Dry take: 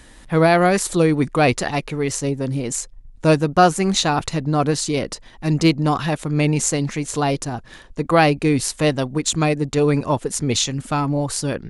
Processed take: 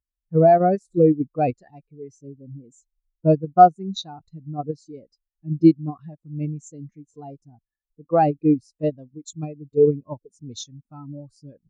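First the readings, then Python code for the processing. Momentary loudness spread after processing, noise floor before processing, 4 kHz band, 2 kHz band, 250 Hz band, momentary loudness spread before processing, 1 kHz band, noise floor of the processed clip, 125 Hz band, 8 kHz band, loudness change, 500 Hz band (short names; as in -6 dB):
23 LU, -45 dBFS, -16.0 dB, -19.0 dB, -3.5 dB, 8 LU, 0.0 dB, under -85 dBFS, -6.5 dB, under -20 dB, -0.5 dB, -1.5 dB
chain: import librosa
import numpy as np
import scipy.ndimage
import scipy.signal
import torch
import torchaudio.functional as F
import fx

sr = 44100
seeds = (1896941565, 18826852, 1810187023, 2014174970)

p1 = fx.dynamic_eq(x, sr, hz=5300.0, q=1.3, threshold_db=-40.0, ratio=4.0, max_db=6)
p2 = fx.level_steps(p1, sr, step_db=16)
p3 = p1 + F.gain(torch.from_numpy(p2), 0.5).numpy()
p4 = fx.spectral_expand(p3, sr, expansion=2.5)
y = F.gain(torch.from_numpy(p4), -8.0).numpy()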